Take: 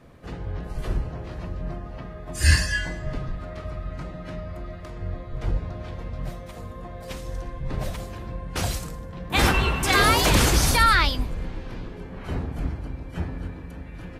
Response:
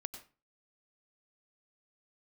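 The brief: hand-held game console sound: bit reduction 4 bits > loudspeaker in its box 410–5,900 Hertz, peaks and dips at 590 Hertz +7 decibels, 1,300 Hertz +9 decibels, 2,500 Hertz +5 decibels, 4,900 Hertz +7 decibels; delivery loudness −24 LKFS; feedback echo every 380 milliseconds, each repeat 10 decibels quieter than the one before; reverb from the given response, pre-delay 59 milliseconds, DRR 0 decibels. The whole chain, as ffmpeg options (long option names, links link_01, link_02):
-filter_complex "[0:a]aecho=1:1:380|760|1140|1520:0.316|0.101|0.0324|0.0104,asplit=2[link_01][link_02];[1:a]atrim=start_sample=2205,adelay=59[link_03];[link_02][link_03]afir=irnorm=-1:irlink=0,volume=2.5dB[link_04];[link_01][link_04]amix=inputs=2:normalize=0,acrusher=bits=3:mix=0:aa=0.000001,highpass=410,equalizer=frequency=590:width_type=q:width=4:gain=7,equalizer=frequency=1300:width_type=q:width=4:gain=9,equalizer=frequency=2500:width_type=q:width=4:gain=5,equalizer=frequency=4900:width_type=q:width=4:gain=7,lowpass=frequency=5900:width=0.5412,lowpass=frequency=5900:width=1.3066,volume=-7dB"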